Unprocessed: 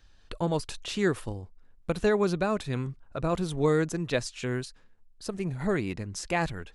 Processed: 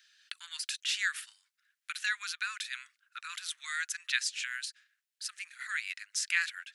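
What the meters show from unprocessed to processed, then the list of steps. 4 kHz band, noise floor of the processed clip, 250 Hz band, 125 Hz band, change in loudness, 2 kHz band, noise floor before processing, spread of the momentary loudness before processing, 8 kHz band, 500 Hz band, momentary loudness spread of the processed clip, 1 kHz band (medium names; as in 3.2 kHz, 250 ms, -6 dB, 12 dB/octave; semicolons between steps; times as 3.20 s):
+4.5 dB, under -85 dBFS, under -40 dB, under -40 dB, -5.0 dB, +3.5 dB, -58 dBFS, 13 LU, +4.5 dB, under -40 dB, 13 LU, -12.0 dB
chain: steep high-pass 1.5 kHz 48 dB/octave; trim +4.5 dB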